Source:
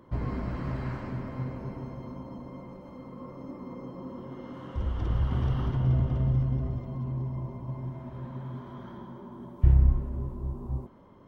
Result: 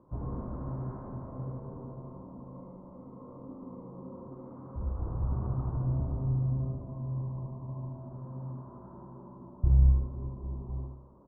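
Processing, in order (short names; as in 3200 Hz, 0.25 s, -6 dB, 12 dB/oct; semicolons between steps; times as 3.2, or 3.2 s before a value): steep low-pass 1200 Hz 36 dB/oct; feedback echo 76 ms, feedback 50%, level -4 dB; gain -6 dB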